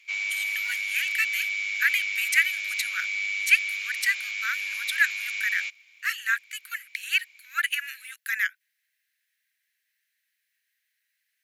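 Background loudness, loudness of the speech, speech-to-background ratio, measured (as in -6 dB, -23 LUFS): -28.0 LUFS, -27.5 LUFS, 0.5 dB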